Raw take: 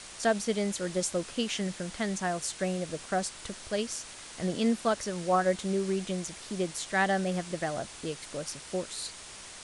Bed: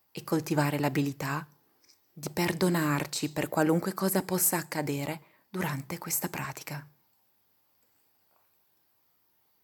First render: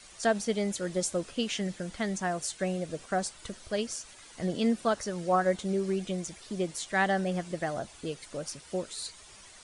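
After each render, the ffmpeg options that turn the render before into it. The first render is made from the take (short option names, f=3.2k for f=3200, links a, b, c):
-af "afftdn=nr=10:nf=-46"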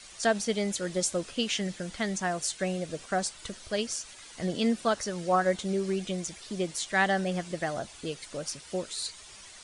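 -af "lowpass=f=3.7k:p=1,highshelf=f=2.7k:g=11"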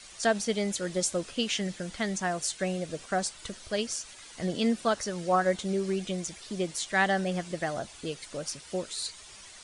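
-af anull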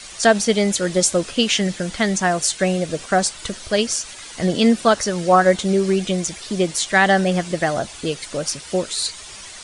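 -af "volume=11.5dB,alimiter=limit=-3dB:level=0:latency=1"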